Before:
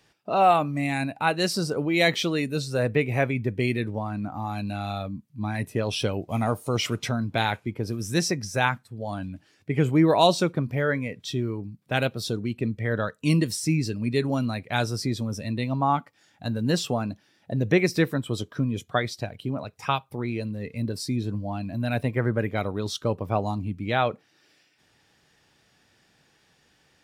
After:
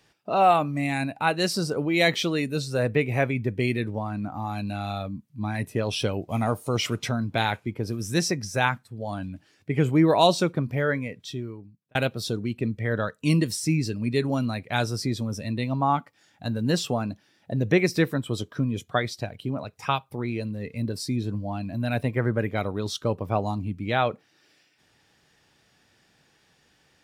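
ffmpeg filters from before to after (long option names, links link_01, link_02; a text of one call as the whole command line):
ffmpeg -i in.wav -filter_complex "[0:a]asplit=2[link_01][link_02];[link_01]atrim=end=11.95,asetpts=PTS-STARTPTS,afade=type=out:start_time=10.89:duration=1.06[link_03];[link_02]atrim=start=11.95,asetpts=PTS-STARTPTS,afade=type=in:duration=0.004:curve=hsin[link_04];[link_03][link_04]concat=n=2:v=0:a=1" out.wav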